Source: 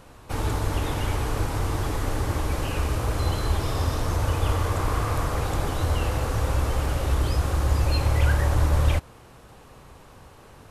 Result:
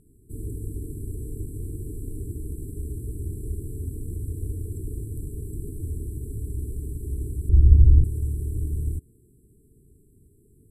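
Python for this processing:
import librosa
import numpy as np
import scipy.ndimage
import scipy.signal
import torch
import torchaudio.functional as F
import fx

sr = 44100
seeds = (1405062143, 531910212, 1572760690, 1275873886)

y = fx.brickwall_bandstop(x, sr, low_hz=450.0, high_hz=7500.0)
y = fx.riaa(y, sr, side='playback', at=(7.49, 8.04))
y = y * 10.0 ** (-6.5 / 20.0)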